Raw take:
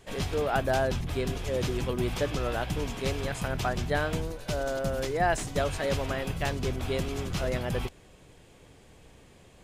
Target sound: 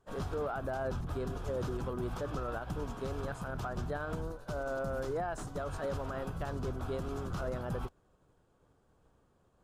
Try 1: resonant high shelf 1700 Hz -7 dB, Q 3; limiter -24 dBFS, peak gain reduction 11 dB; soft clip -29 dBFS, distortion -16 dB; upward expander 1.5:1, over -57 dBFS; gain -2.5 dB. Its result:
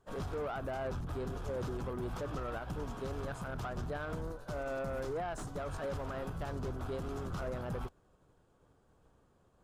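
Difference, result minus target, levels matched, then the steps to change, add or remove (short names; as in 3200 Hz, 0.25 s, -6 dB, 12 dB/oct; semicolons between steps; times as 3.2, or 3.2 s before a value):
soft clip: distortion +12 dB
change: soft clip -21 dBFS, distortion -28 dB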